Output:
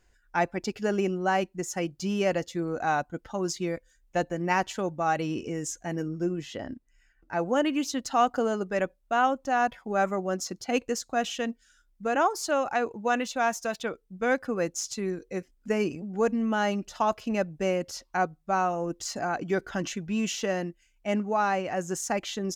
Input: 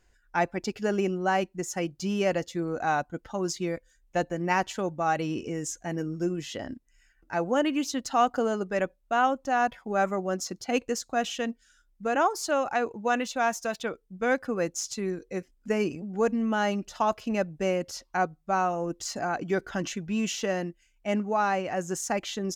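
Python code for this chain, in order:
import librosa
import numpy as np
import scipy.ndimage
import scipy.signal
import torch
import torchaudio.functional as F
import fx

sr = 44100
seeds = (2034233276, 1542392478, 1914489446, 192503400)

y = fx.high_shelf(x, sr, hz=3400.0, db=-7.0, at=(6.08, 7.39))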